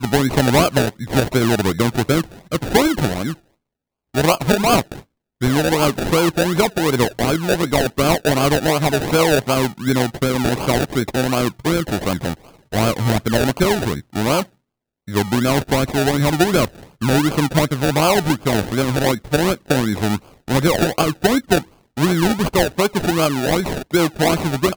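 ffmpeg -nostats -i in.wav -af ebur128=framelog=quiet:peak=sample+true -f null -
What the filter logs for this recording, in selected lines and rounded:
Integrated loudness:
  I:         -18.1 LUFS
  Threshold: -28.3 LUFS
Loudness range:
  LRA:         2.5 LU
  Threshold: -38.5 LUFS
  LRA low:   -19.9 LUFS
  LRA high:  -17.3 LUFS
Sample peak:
  Peak:       -1.6 dBFS
True peak:
  Peak:       -0.4 dBFS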